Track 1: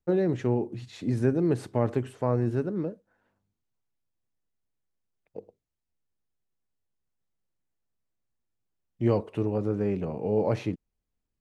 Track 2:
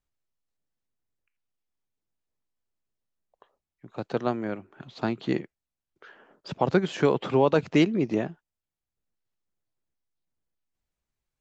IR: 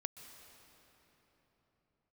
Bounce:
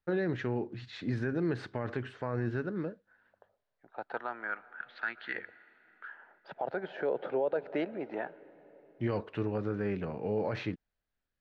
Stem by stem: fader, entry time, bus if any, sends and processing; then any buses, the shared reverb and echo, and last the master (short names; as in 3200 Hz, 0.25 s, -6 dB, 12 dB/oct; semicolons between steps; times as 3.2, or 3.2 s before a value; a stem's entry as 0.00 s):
-5.5 dB, 0.00 s, no send, dry
-1.5 dB, 0.00 s, send -10 dB, bell 1100 Hz -12.5 dB 0.21 oct; wah 0.24 Hz 550–1600 Hz, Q 2.7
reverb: on, pre-delay 0.117 s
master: synth low-pass 4100 Hz, resonance Q 1.8; bell 1600 Hz +12.5 dB 0.84 oct; limiter -22.5 dBFS, peak gain reduction 9.5 dB